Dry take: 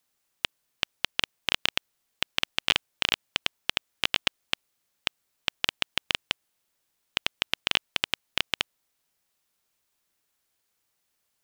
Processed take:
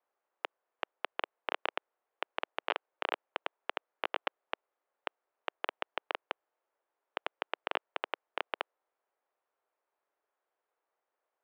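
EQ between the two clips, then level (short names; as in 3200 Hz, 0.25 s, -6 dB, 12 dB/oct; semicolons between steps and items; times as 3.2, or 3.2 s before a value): HPF 420 Hz 24 dB/oct; LPF 1100 Hz 12 dB/oct; air absorption 130 m; +4.0 dB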